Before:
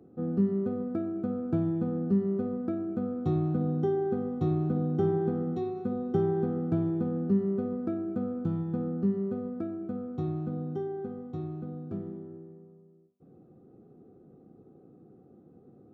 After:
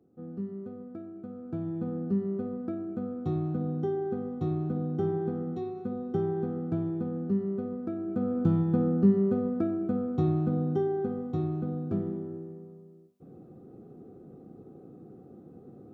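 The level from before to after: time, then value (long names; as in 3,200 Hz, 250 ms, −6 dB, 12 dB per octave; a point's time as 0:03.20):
0:01.32 −10 dB
0:01.87 −2.5 dB
0:07.93 −2.5 dB
0:08.43 +6 dB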